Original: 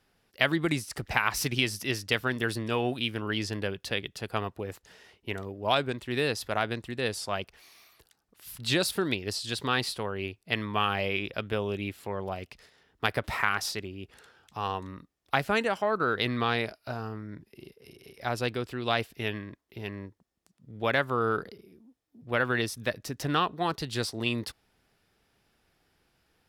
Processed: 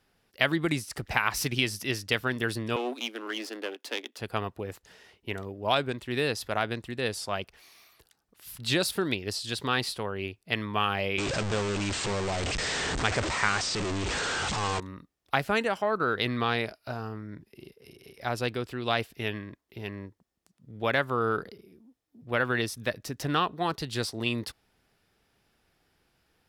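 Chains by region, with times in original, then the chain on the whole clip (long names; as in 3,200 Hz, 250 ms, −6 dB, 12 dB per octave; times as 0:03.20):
0:02.76–0:04.19: gain on one half-wave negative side −12 dB + Butterworth high-pass 240 Hz 72 dB per octave
0:11.18–0:14.80: linear delta modulator 64 kbit/s, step −24 dBFS + linear-phase brick-wall low-pass 8,800 Hz
whole clip: no processing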